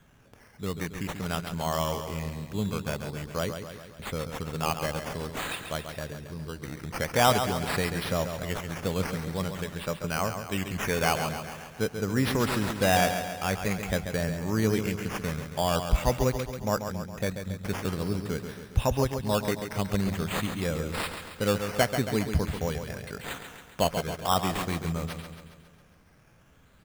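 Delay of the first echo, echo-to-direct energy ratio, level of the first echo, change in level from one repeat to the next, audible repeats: 137 ms, -6.5 dB, -8.0 dB, -5.0 dB, 6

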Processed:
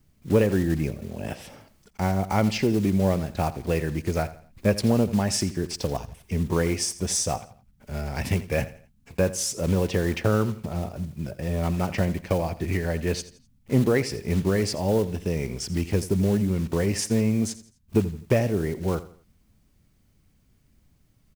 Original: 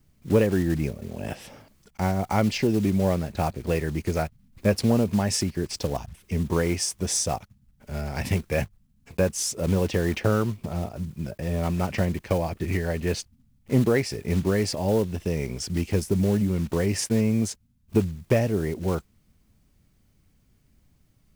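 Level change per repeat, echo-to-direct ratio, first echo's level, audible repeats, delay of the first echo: -9.0 dB, -15.5 dB, -16.0 dB, 3, 84 ms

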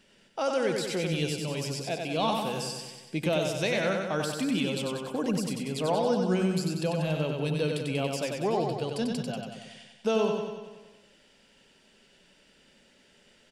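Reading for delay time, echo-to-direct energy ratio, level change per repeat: 94 ms, -2.0 dB, -4.5 dB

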